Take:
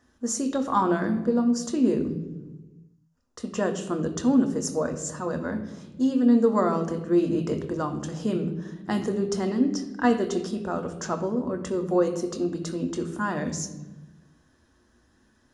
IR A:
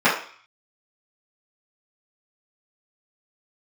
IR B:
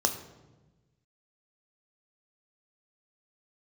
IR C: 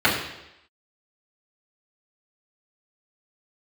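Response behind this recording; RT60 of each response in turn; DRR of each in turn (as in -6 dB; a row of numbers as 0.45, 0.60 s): B; 0.50, 1.2, 0.85 s; -12.5, 6.0, -10.0 dB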